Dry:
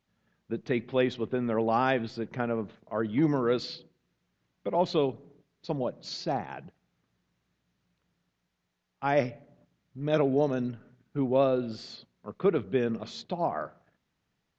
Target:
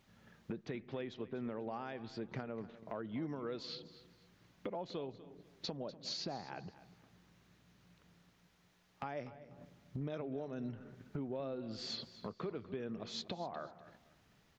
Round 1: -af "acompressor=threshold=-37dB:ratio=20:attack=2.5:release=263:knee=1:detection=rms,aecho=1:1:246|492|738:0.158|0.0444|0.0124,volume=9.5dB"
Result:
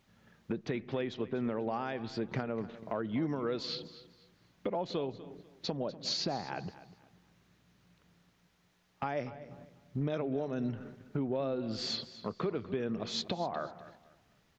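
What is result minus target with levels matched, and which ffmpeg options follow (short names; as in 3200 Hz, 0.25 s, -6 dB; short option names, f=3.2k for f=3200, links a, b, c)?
compressor: peak gain reduction -7.5 dB
-af "acompressor=threshold=-45dB:ratio=20:attack=2.5:release=263:knee=1:detection=rms,aecho=1:1:246|492|738:0.158|0.0444|0.0124,volume=9.5dB"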